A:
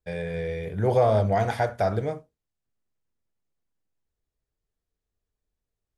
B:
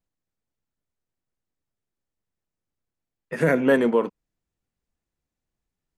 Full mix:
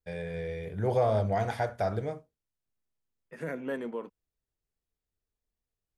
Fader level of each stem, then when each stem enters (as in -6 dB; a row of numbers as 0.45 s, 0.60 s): -5.5 dB, -16.0 dB; 0.00 s, 0.00 s